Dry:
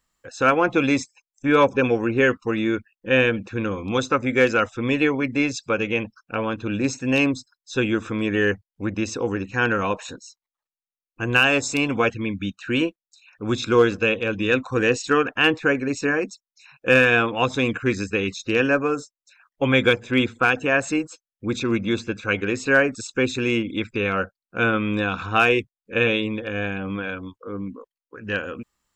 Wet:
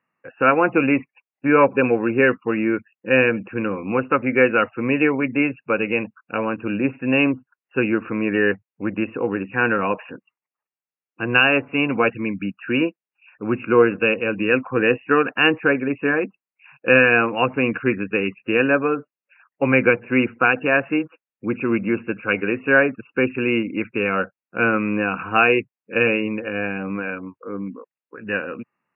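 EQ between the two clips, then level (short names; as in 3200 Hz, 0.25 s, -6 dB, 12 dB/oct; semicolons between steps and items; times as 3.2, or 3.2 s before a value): HPF 130 Hz 24 dB/oct; brick-wall FIR low-pass 2900 Hz; +2.0 dB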